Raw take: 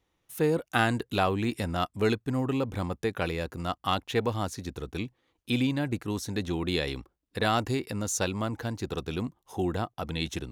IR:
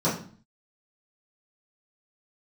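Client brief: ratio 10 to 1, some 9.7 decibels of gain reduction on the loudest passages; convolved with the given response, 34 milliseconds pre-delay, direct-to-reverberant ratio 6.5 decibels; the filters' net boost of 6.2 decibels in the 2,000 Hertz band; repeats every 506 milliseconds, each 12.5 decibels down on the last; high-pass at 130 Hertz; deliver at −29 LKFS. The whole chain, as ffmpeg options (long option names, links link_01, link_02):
-filter_complex "[0:a]highpass=130,equalizer=frequency=2000:width_type=o:gain=8.5,acompressor=threshold=-26dB:ratio=10,aecho=1:1:506|1012|1518:0.237|0.0569|0.0137,asplit=2[link_01][link_02];[1:a]atrim=start_sample=2205,adelay=34[link_03];[link_02][link_03]afir=irnorm=-1:irlink=0,volume=-20dB[link_04];[link_01][link_04]amix=inputs=2:normalize=0,volume=2dB"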